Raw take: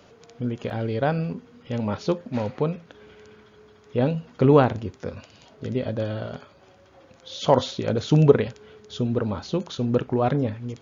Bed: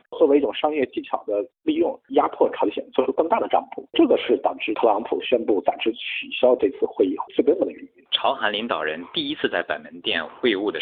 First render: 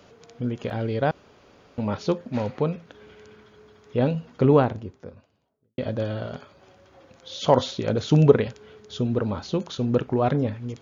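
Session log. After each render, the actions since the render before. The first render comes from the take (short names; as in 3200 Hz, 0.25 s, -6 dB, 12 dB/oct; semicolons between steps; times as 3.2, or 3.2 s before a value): 1.11–1.78 room tone; 4.12–5.78 studio fade out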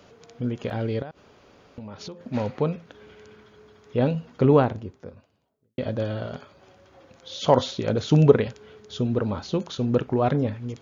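1.02–2.21 compressor 10:1, threshold -34 dBFS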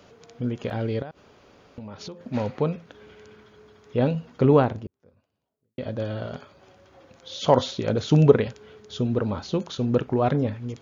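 4.87–6.31 fade in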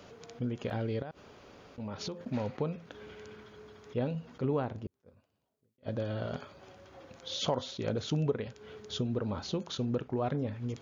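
compressor 3:1, threshold -32 dBFS, peak gain reduction 17 dB; attack slew limiter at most 490 dB/s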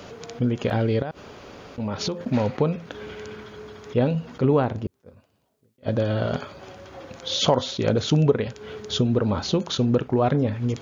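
gain +11.5 dB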